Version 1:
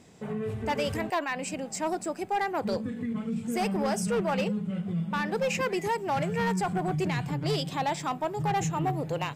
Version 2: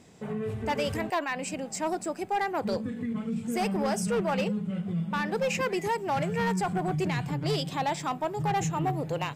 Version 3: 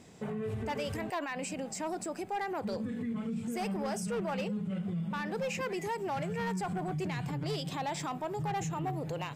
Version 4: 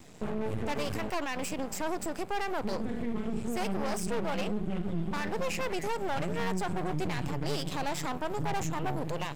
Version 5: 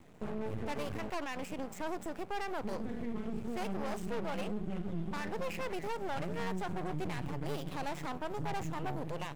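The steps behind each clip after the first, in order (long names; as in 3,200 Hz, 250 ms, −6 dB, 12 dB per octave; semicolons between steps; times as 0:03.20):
no processing that can be heard
brickwall limiter −29 dBFS, peak gain reduction 7 dB
half-wave rectification; level +6.5 dB
running median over 9 samples; level −5 dB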